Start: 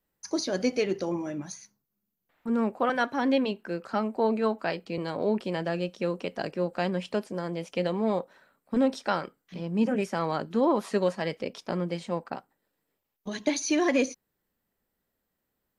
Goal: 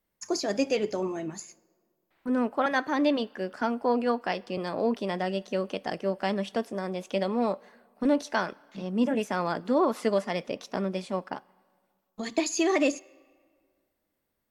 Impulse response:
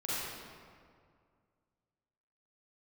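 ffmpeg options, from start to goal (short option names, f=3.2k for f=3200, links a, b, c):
-filter_complex "[0:a]asplit=2[a][b];[1:a]atrim=start_sample=2205,lowshelf=f=430:g=-10[c];[b][c]afir=irnorm=-1:irlink=0,volume=-28dB[d];[a][d]amix=inputs=2:normalize=0,asetrate=48000,aresample=44100"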